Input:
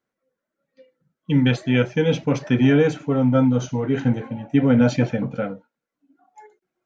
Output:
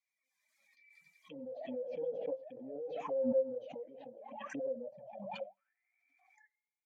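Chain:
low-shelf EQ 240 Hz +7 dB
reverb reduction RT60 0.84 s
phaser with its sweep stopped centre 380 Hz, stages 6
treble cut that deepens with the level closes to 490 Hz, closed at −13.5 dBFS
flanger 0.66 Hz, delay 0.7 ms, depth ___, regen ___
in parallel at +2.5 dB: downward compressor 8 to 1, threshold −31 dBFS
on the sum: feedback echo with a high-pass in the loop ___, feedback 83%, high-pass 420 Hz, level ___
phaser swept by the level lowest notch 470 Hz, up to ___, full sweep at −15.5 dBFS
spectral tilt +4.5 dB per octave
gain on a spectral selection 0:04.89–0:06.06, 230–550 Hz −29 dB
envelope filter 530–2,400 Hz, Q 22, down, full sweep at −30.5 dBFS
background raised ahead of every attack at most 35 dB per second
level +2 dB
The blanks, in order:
10 ms, +57%, 91 ms, −24 dB, 3,500 Hz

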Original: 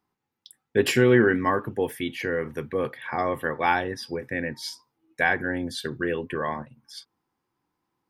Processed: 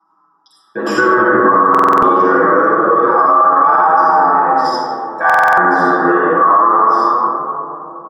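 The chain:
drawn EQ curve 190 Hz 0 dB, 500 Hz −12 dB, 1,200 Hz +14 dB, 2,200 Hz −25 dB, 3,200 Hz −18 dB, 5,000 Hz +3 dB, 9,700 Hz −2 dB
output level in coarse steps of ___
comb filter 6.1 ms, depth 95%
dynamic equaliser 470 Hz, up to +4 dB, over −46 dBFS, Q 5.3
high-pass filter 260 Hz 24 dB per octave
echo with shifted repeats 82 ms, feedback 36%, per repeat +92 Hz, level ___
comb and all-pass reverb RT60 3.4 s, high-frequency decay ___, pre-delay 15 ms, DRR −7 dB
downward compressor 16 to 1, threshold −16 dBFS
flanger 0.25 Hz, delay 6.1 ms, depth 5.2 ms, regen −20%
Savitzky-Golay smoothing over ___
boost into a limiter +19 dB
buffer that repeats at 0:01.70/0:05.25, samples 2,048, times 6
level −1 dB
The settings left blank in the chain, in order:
11 dB, −10.5 dB, 0.25×, 25 samples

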